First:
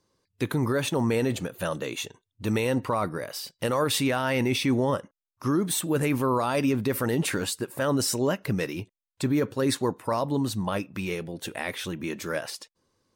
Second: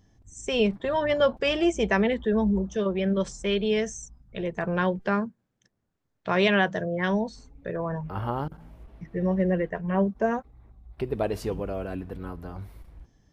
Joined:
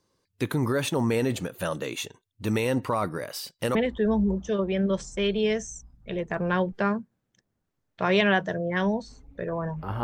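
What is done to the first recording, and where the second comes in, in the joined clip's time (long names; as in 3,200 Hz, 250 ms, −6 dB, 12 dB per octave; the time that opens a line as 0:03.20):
first
0:03.75: continue with second from 0:02.02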